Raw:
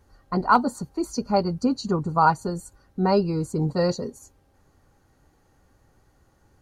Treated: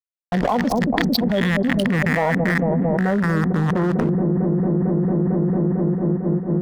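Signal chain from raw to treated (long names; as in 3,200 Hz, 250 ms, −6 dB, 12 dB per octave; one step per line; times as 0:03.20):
loose part that buzzes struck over −30 dBFS, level −13 dBFS
parametric band 3,200 Hz −7.5 dB 1 octave
hollow resonant body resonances 210/490/710 Hz, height 7 dB, ringing for 25 ms
formants moved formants −5 semitones
low-pass filter sweep 5,200 Hz → 1,100 Hz, 0:00.64–0:03.69
dead-zone distortion −33 dBFS
delay with a low-pass on its return 225 ms, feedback 77%, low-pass 430 Hz, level −12.5 dB
envelope flattener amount 100%
level −7.5 dB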